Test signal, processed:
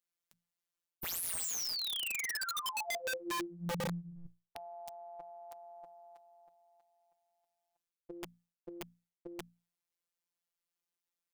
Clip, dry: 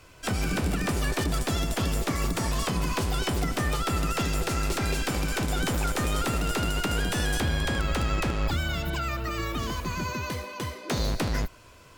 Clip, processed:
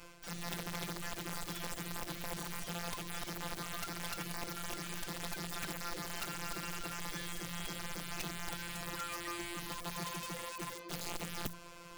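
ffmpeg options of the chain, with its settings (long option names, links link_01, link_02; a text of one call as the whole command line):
ffmpeg -i in.wav -af "bandreject=frequency=60:width_type=h:width=6,bandreject=frequency=120:width_type=h:width=6,bandreject=frequency=180:width_type=h:width=6,bandreject=frequency=240:width_type=h:width=6,areverse,acompressor=threshold=-38dB:ratio=4,areverse,afftfilt=real='hypot(re,im)*cos(PI*b)':imag='0':win_size=1024:overlap=0.75,aeval=exprs='(mod(63.1*val(0)+1,2)-1)/63.1':channel_layout=same,volume=3.5dB" out.wav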